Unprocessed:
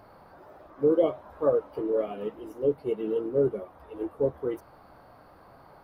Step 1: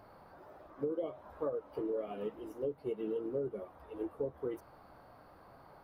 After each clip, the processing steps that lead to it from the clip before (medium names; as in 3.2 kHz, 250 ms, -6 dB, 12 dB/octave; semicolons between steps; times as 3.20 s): compression 10:1, threshold -28 dBFS, peak gain reduction 11.5 dB; trim -4.5 dB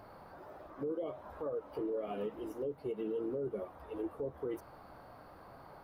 peak limiter -33.5 dBFS, peak gain reduction 9 dB; trim +3.5 dB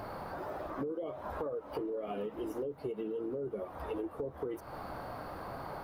compression 10:1, threshold -46 dBFS, peak gain reduction 13 dB; trim +11.5 dB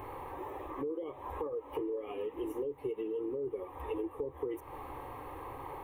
static phaser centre 970 Hz, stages 8; trim +2 dB